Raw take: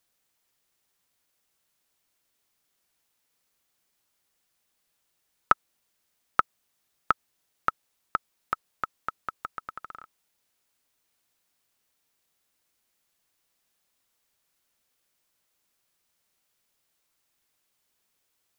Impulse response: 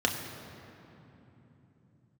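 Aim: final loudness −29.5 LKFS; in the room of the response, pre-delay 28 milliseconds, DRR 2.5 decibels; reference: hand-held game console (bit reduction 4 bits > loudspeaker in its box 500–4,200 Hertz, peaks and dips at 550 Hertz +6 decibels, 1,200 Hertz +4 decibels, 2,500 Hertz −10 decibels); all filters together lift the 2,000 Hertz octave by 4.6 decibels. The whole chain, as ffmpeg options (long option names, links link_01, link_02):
-filter_complex "[0:a]equalizer=frequency=2000:width_type=o:gain=7,asplit=2[link_01][link_02];[1:a]atrim=start_sample=2205,adelay=28[link_03];[link_02][link_03]afir=irnorm=-1:irlink=0,volume=-13dB[link_04];[link_01][link_04]amix=inputs=2:normalize=0,acrusher=bits=3:mix=0:aa=0.000001,highpass=500,equalizer=frequency=550:width_type=q:width=4:gain=6,equalizer=frequency=1200:width_type=q:width=4:gain=4,equalizer=frequency=2500:width_type=q:width=4:gain=-10,lowpass=frequency=4200:width=0.5412,lowpass=frequency=4200:width=1.3066,volume=-4dB"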